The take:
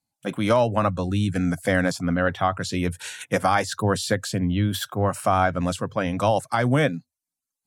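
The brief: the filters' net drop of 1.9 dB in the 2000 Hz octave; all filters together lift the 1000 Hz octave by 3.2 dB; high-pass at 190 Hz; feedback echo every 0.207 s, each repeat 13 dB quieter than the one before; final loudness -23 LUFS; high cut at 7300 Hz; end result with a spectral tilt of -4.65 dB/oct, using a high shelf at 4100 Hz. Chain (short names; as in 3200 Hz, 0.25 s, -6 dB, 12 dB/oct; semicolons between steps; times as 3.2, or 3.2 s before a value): HPF 190 Hz; LPF 7300 Hz; bell 1000 Hz +5.5 dB; bell 2000 Hz -6 dB; high shelf 4100 Hz +5.5 dB; feedback echo 0.207 s, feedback 22%, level -13 dB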